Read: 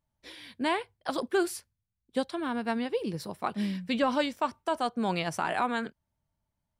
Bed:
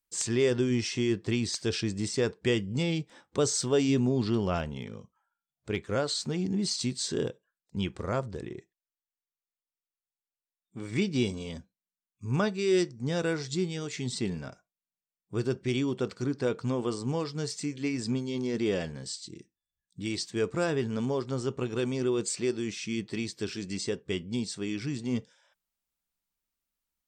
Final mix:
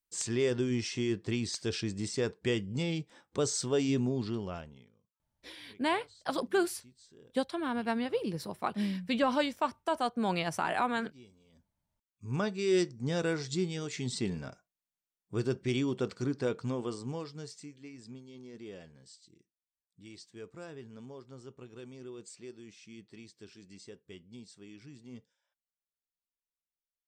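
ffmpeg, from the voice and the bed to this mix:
-filter_complex "[0:a]adelay=5200,volume=-1.5dB[a];[1:a]volume=21.5dB,afade=t=out:st=4:d=0.92:silence=0.0668344,afade=t=in:st=11.51:d=1.27:silence=0.0530884,afade=t=out:st=16.26:d=1.55:silence=0.16788[b];[a][b]amix=inputs=2:normalize=0"

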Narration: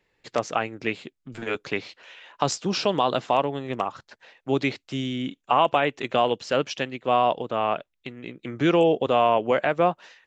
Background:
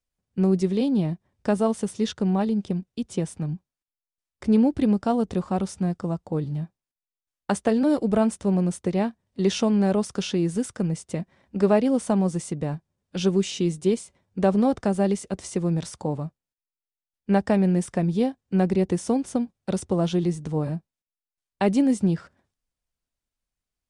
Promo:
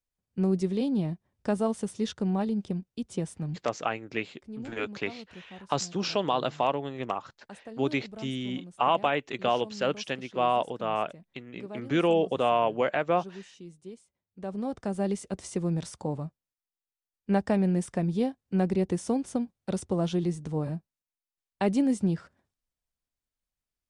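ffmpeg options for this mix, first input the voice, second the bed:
-filter_complex "[0:a]adelay=3300,volume=-4.5dB[a];[1:a]volume=12.5dB,afade=t=out:st=3.79:d=0.3:silence=0.141254,afade=t=in:st=14.32:d=0.96:silence=0.133352[b];[a][b]amix=inputs=2:normalize=0"

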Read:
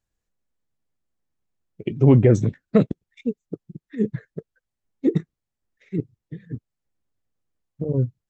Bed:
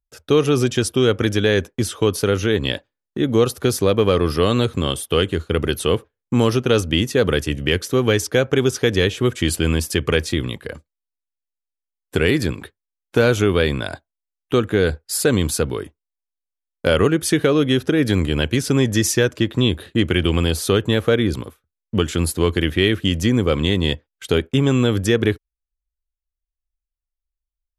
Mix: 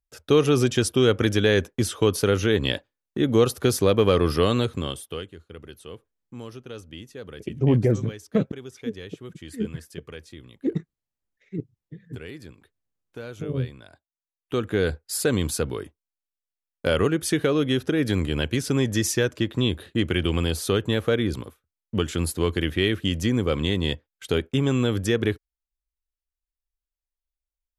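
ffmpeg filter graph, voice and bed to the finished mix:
-filter_complex "[0:a]adelay=5600,volume=-5.5dB[a];[1:a]volume=14dB,afade=t=out:st=4.35:d=0.95:silence=0.105925,afade=t=in:st=14.11:d=0.67:silence=0.149624[b];[a][b]amix=inputs=2:normalize=0"

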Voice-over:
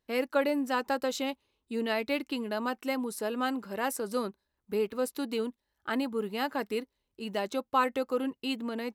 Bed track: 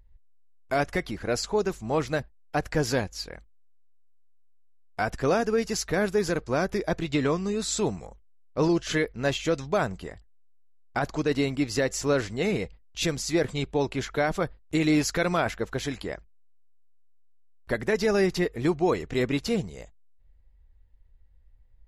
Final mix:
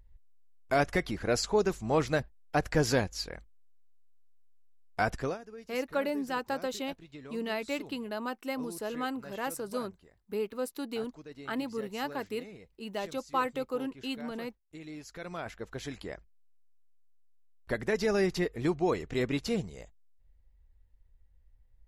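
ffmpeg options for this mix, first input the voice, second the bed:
-filter_complex "[0:a]adelay=5600,volume=-3.5dB[a];[1:a]volume=16.5dB,afade=t=out:st=5.09:d=0.29:silence=0.0891251,afade=t=in:st=15.04:d=1.45:silence=0.133352[b];[a][b]amix=inputs=2:normalize=0"

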